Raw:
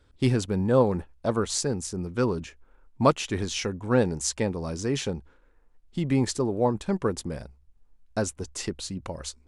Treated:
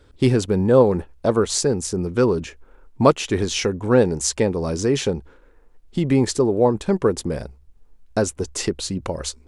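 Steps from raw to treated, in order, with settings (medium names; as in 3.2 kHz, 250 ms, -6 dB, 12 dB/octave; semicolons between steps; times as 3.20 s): peaking EQ 420 Hz +5 dB 0.84 oct; in parallel at -1 dB: compression, threshold -30 dBFS, peak gain reduction 17 dB; on the sum: trim +2.5 dB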